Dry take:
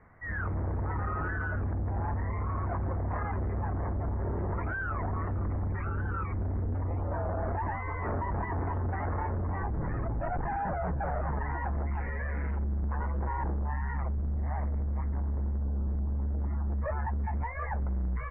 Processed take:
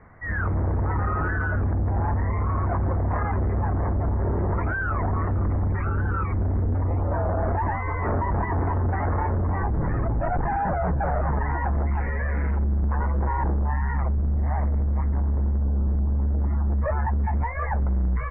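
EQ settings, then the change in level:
high-frequency loss of the air 190 metres
+8.0 dB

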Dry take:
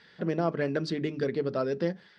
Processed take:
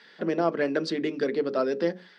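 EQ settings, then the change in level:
high-pass filter 210 Hz 24 dB per octave
mains-hum notches 60/120/180/240/300/360/420/480/540 Hz
+4.0 dB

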